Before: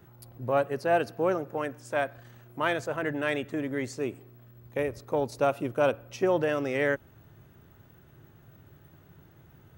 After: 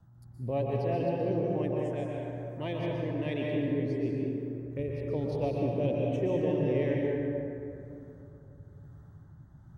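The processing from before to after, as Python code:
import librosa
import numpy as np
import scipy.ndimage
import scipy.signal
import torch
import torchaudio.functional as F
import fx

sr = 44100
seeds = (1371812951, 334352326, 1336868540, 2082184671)

y = scipy.signal.sosfilt(scipy.signal.butter(2, 8700.0, 'lowpass', fs=sr, output='sos'), x)
y = fx.low_shelf(y, sr, hz=290.0, db=10.0)
y = fx.env_phaser(y, sr, low_hz=370.0, high_hz=1400.0, full_db=-25.5)
y = fx.rotary(y, sr, hz=1.1)
y = fx.rev_plate(y, sr, seeds[0], rt60_s=2.9, hf_ratio=0.4, predelay_ms=110, drr_db=-3.0)
y = y * 10.0 ** (-6.0 / 20.0)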